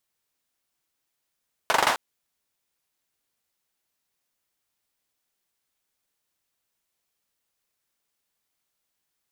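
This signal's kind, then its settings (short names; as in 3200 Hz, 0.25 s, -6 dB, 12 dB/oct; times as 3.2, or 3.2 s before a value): hand clap length 0.26 s, bursts 5, apart 42 ms, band 920 Hz, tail 0.38 s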